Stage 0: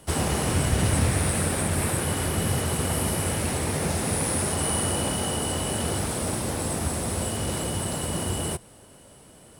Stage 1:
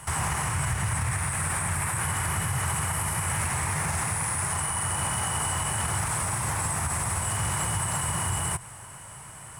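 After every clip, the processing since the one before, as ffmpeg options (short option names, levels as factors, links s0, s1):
-af "equalizer=f=125:t=o:w=1:g=9,equalizer=f=250:t=o:w=1:g=-11,equalizer=f=500:t=o:w=1:g=-9,equalizer=f=1000:t=o:w=1:g=11,equalizer=f=2000:t=o:w=1:g=8,equalizer=f=4000:t=o:w=1:g=-7,equalizer=f=8000:t=o:w=1:g=8,acompressor=threshold=0.0708:ratio=6,alimiter=limit=0.0794:level=0:latency=1:release=73,volume=1.5"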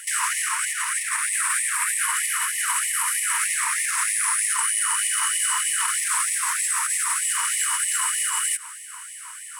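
-af "afftfilt=real='re*gte(b*sr/1024,880*pow(1800/880,0.5+0.5*sin(2*PI*3.2*pts/sr)))':imag='im*gte(b*sr/1024,880*pow(1800/880,0.5+0.5*sin(2*PI*3.2*pts/sr)))':win_size=1024:overlap=0.75,volume=2.37"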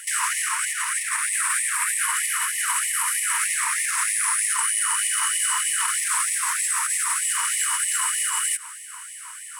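-af anull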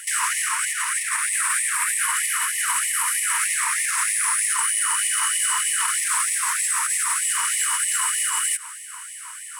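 -af "asoftclip=type=tanh:threshold=0.282,volume=1.19"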